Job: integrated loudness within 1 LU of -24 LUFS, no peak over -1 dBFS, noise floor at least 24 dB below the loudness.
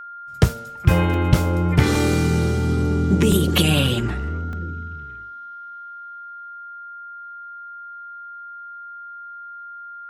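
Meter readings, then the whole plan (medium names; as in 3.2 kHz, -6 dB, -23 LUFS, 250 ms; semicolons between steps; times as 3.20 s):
dropouts 5; longest dropout 2.1 ms; steady tone 1.4 kHz; tone level -34 dBFS; loudness -20.0 LUFS; peak level -2.0 dBFS; loudness target -24.0 LUFS
-> interpolate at 0.49/1.14/1.95/3.32/4.53 s, 2.1 ms; band-stop 1.4 kHz, Q 30; trim -4 dB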